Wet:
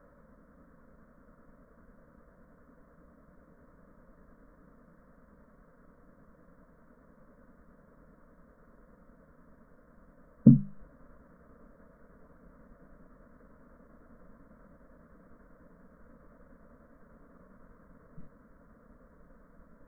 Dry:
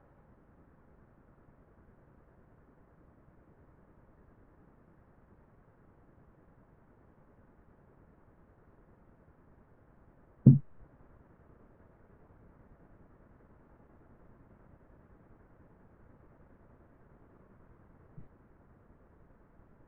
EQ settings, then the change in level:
mains-hum notches 50/100/150/200 Hz
phaser with its sweep stopped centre 540 Hz, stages 8
+6.5 dB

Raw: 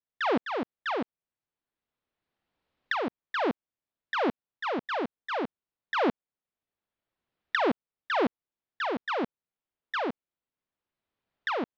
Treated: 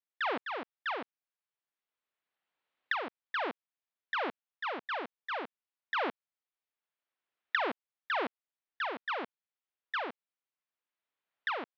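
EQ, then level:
high-pass filter 1,300 Hz 6 dB per octave
low-pass filter 3,500 Hz 12 dB per octave
0.0 dB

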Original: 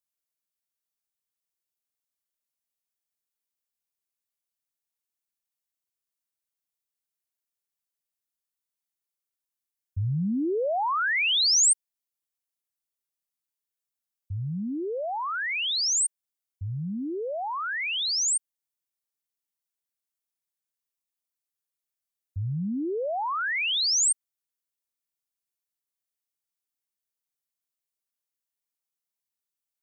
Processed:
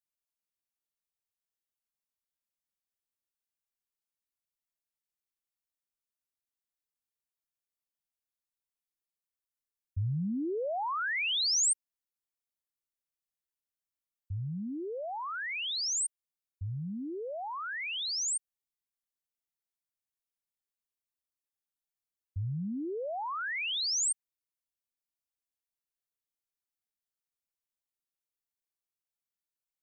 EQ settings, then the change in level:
low-shelf EQ 71 Hz +10 dB
−7.0 dB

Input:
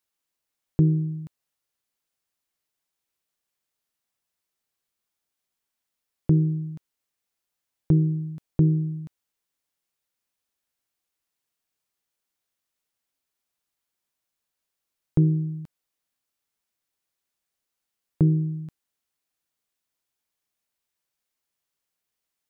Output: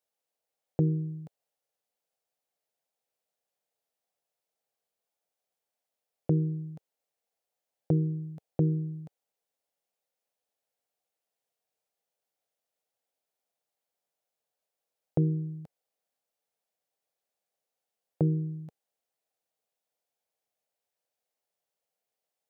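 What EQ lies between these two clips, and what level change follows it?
high-pass filter 100 Hz
flat-topped bell 600 Hz +11.5 dB 1.1 octaves
−6.0 dB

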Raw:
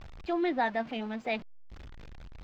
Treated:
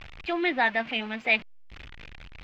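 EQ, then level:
parametric band 2,500 Hz +14.5 dB 1.5 octaves
0.0 dB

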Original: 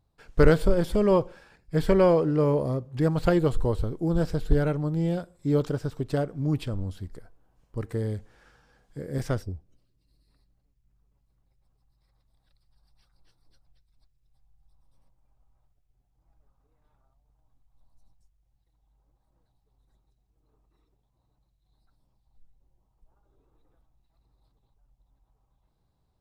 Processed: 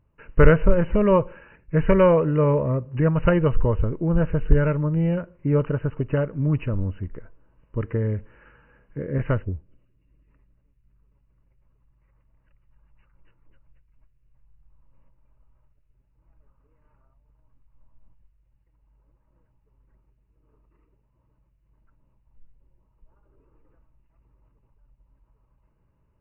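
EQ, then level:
dynamic equaliser 330 Hz, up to −7 dB, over −35 dBFS, Q 1.6
Butterworth band-reject 750 Hz, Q 4.3
linear-phase brick-wall low-pass 3,000 Hz
+6.0 dB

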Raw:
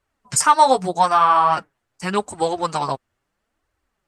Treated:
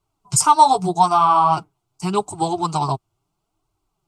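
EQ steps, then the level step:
parametric band 87 Hz +8.5 dB 2.5 octaves
phaser with its sweep stopped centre 350 Hz, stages 8
+2.0 dB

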